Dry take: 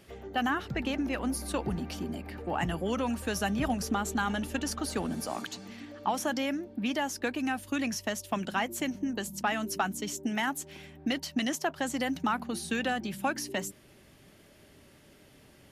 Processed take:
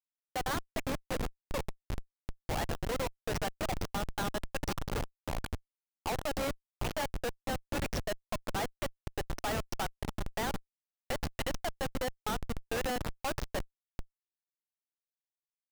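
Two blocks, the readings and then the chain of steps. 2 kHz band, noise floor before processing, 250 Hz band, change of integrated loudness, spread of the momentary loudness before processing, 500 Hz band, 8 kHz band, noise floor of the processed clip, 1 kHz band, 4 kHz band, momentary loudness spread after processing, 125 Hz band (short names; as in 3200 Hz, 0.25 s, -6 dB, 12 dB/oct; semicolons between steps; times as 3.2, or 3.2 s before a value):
-6.0 dB, -58 dBFS, -10.0 dB, -5.0 dB, 6 LU, -2.0 dB, -6.5 dB, under -85 dBFS, -5.0 dB, -4.0 dB, 6 LU, 0.0 dB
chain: band-limited delay 0.738 s, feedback 55%, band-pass 1100 Hz, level -11 dB; FFT band-pass 430–6200 Hz; Schmitt trigger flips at -31 dBFS; gain +4 dB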